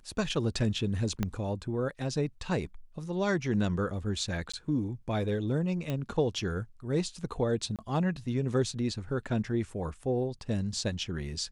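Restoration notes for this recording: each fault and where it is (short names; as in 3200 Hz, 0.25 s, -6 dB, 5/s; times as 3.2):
1.23 pop -16 dBFS
4.52–4.54 gap 15 ms
5.9 pop -20 dBFS
7.76–7.79 gap 27 ms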